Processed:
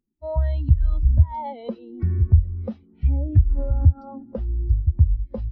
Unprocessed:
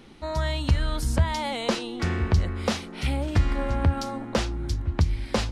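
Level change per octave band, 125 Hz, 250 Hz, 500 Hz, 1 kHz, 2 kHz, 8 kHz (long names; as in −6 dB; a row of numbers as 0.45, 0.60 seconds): +6.0 dB, −4.0 dB, −4.0 dB, −5.0 dB, below −20 dB, below −40 dB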